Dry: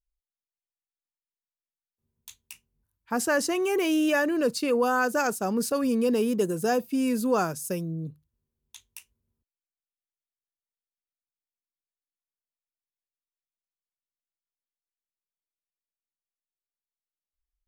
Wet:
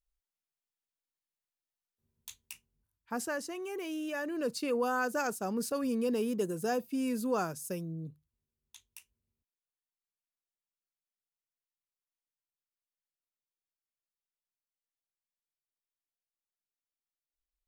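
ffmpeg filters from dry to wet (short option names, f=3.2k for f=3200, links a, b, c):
-af "volume=5.5dB,afade=t=out:st=2.37:d=1.06:silence=0.237137,afade=t=in:st=4.12:d=0.47:silence=0.473151"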